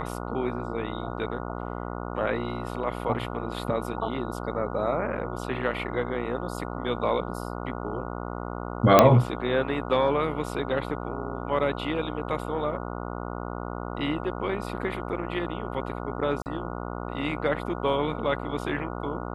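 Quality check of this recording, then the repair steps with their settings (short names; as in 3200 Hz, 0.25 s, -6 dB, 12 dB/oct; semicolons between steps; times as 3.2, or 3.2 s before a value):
buzz 60 Hz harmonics 24 -34 dBFS
8.99 pop -1 dBFS
16.42–16.46 gap 39 ms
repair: de-click; de-hum 60 Hz, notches 24; interpolate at 16.42, 39 ms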